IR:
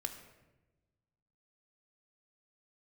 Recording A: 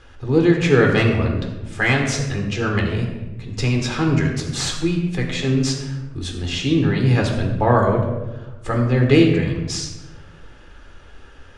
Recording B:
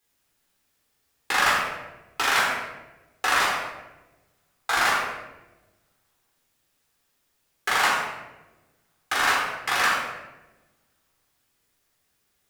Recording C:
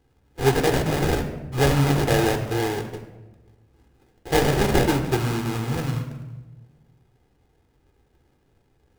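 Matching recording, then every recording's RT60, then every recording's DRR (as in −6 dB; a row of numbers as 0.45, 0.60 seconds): C; 1.1, 1.1, 1.1 seconds; 1.0, −4.5, 6.0 decibels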